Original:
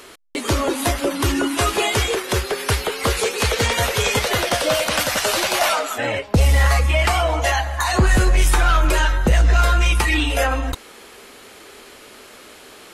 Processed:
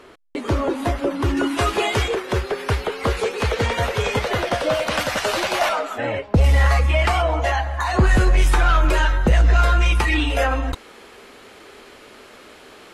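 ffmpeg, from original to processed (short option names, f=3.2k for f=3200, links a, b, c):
-af "asetnsamples=n=441:p=0,asendcmd='1.37 lowpass f 3000;2.08 lowpass f 1700;4.87 lowpass f 2800;5.69 lowpass f 1500;6.44 lowpass f 3000;7.22 lowpass f 1800;7.99 lowpass f 3300',lowpass=f=1.2k:p=1"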